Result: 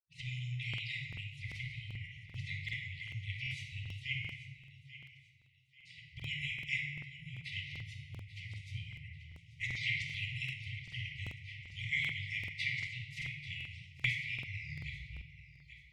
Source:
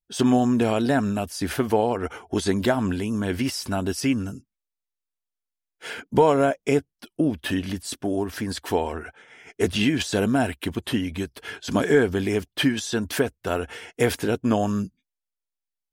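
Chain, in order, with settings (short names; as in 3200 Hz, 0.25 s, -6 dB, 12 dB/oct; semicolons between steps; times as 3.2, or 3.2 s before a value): tape stop at the end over 1.70 s; weighting filter A; spectral gate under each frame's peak -15 dB weak; low-pass opened by the level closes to 560 Hz, open at -21 dBFS; harmonic-percussive split harmonic -10 dB; compressor 2:1, threshold -55 dBFS, peak gain reduction 15 dB; brick-wall FIR band-stop 150–1900 Hz; thinning echo 0.838 s, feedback 35%, high-pass 190 Hz, level -14.5 dB; shoebox room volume 1500 m³, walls mixed, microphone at 2.1 m; crackling interface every 0.39 s, samples 2048, repeat, from 0.69; gain +17.5 dB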